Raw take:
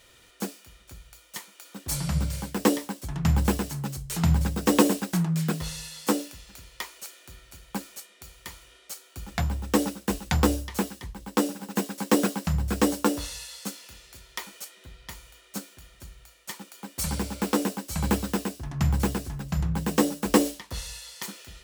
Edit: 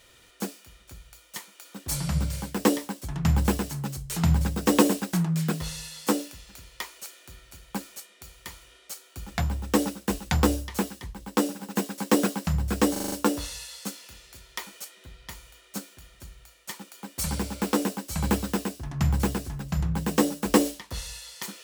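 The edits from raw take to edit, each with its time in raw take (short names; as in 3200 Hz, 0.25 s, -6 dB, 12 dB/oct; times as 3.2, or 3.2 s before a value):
12.92 stutter 0.04 s, 6 plays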